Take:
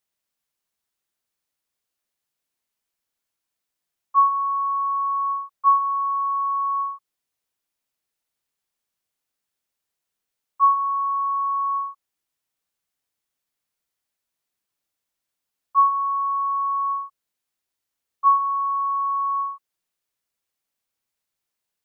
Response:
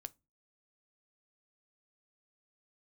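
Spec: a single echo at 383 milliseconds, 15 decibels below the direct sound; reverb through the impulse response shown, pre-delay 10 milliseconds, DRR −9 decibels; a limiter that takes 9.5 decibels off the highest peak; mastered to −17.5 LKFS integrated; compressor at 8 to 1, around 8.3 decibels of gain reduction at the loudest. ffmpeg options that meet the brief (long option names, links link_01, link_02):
-filter_complex "[0:a]acompressor=threshold=-21dB:ratio=8,alimiter=level_in=2.5dB:limit=-24dB:level=0:latency=1,volume=-2.5dB,aecho=1:1:383:0.178,asplit=2[link_01][link_02];[1:a]atrim=start_sample=2205,adelay=10[link_03];[link_02][link_03]afir=irnorm=-1:irlink=0,volume=14dB[link_04];[link_01][link_04]amix=inputs=2:normalize=0,volume=1dB"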